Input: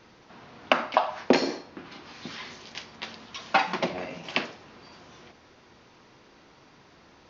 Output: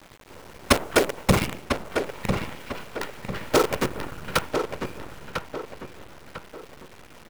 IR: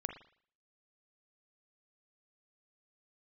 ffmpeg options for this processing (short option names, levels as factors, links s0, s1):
-filter_complex "[0:a]bandreject=f=50:t=h:w=6,bandreject=f=100:t=h:w=6,bandreject=f=150:t=h:w=6,bandreject=f=200:t=h:w=6,bandreject=f=250:t=h:w=6,aecho=1:1:1.1:0.35,asplit=2[s0][s1];[s1]acompressor=threshold=0.01:ratio=12,volume=1[s2];[s0][s2]amix=inputs=2:normalize=0,aeval=exprs='(mod(2.11*val(0)+1,2)-1)/2.11':c=same,asetrate=22696,aresample=44100,atempo=1.94306,afftfilt=real='hypot(re,im)*cos(2*PI*random(0))':imag='hypot(re,im)*sin(2*PI*random(1))':win_size=512:overlap=0.75,acrusher=bits=6:dc=4:mix=0:aa=0.000001,asplit=2[s3][s4];[s4]adelay=998,lowpass=f=3200:p=1,volume=0.501,asplit=2[s5][s6];[s6]adelay=998,lowpass=f=3200:p=1,volume=0.4,asplit=2[s7][s8];[s8]adelay=998,lowpass=f=3200:p=1,volume=0.4,asplit=2[s9][s10];[s10]adelay=998,lowpass=f=3200:p=1,volume=0.4,asplit=2[s11][s12];[s12]adelay=998,lowpass=f=3200:p=1,volume=0.4[s13];[s5][s7][s9][s11][s13]amix=inputs=5:normalize=0[s14];[s3][s14]amix=inputs=2:normalize=0,volume=2.51"